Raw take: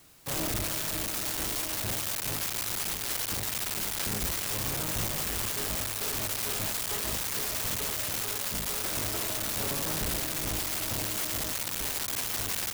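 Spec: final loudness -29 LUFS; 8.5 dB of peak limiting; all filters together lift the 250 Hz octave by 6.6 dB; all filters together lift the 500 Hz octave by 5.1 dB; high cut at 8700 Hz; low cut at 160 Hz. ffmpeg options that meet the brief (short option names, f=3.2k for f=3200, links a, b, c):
-af "highpass=160,lowpass=8.7k,equalizer=f=250:t=o:g=8.5,equalizer=f=500:t=o:g=4,volume=6dB,alimiter=limit=-19.5dB:level=0:latency=1"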